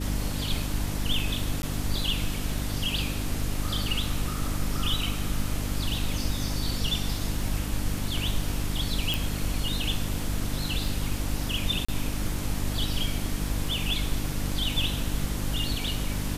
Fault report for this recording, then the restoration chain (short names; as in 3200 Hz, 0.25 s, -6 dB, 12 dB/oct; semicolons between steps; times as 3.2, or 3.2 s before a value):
crackle 25/s -36 dBFS
hum 50 Hz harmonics 6 -32 dBFS
1.62–1.63 gap 11 ms
9.14 pop
11.85–11.88 gap 35 ms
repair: de-click; de-hum 50 Hz, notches 6; interpolate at 1.62, 11 ms; interpolate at 11.85, 35 ms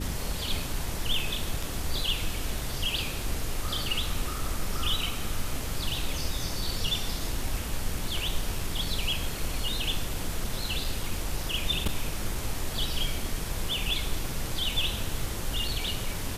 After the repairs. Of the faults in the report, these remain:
none